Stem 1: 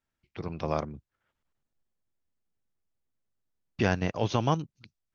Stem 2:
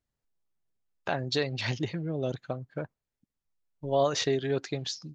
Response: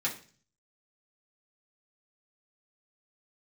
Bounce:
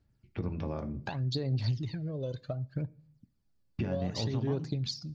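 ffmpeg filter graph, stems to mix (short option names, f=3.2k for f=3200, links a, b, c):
-filter_complex "[0:a]lowpass=f=3.2k:p=1,alimiter=limit=-22dB:level=0:latency=1:release=225,volume=-4dB,asplit=2[a][b];[b]volume=-8dB[c];[1:a]acompressor=threshold=-31dB:ratio=6,aphaser=in_gain=1:out_gain=1:delay=2:decay=0.7:speed=0.66:type=sinusoidal,equalizer=f=4.6k:w=3.1:g=11.5,volume=-6dB,asplit=2[d][e];[e]volume=-20dB[f];[2:a]atrim=start_sample=2205[g];[c][f]amix=inputs=2:normalize=0[h];[h][g]afir=irnorm=-1:irlink=0[i];[a][d][i]amix=inputs=3:normalize=0,equalizer=f=99:w=0.32:g=14.5,acompressor=threshold=-35dB:ratio=2"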